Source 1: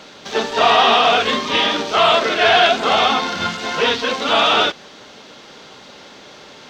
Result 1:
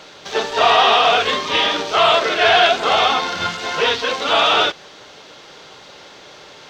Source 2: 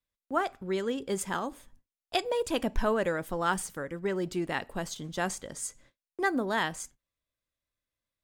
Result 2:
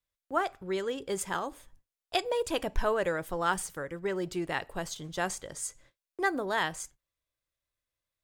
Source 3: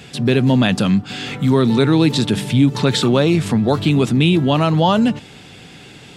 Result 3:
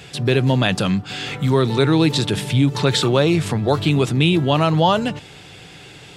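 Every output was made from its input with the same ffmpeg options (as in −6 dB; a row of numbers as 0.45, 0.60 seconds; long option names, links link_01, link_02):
-af "equalizer=frequency=230:width=3.1:gain=-10.5"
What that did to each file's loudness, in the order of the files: 0.0, −1.0, −2.0 LU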